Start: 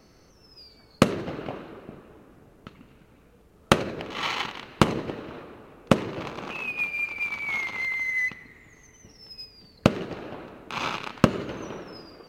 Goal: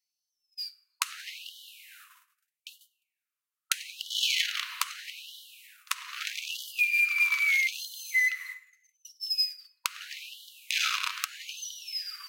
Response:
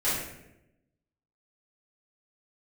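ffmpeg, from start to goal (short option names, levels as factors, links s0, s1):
-filter_complex "[0:a]alimiter=limit=0.282:level=0:latency=1:release=365,agate=range=0.0158:threshold=0.00398:ratio=16:detection=peak,asplit=2[s0][s1];[1:a]atrim=start_sample=2205[s2];[s1][s2]afir=irnorm=-1:irlink=0,volume=0.0596[s3];[s0][s3]amix=inputs=2:normalize=0,acompressor=threshold=0.0251:ratio=3,crystalizer=i=4.5:c=0,afftfilt=real='re*gte(b*sr/1024,940*pow(2900/940,0.5+0.5*sin(2*PI*0.79*pts/sr)))':imag='im*gte(b*sr/1024,940*pow(2900/940,0.5+0.5*sin(2*PI*0.79*pts/sr)))':win_size=1024:overlap=0.75,volume=1.41"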